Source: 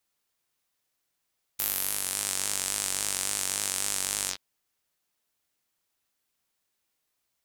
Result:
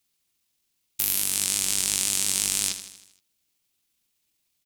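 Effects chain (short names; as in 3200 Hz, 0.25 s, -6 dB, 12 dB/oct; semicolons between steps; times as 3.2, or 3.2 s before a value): band shelf 900 Hz -8.5 dB 2.4 oct; tempo 1.6×; feedback echo 79 ms, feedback 56%, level -11.5 dB; gain +5.5 dB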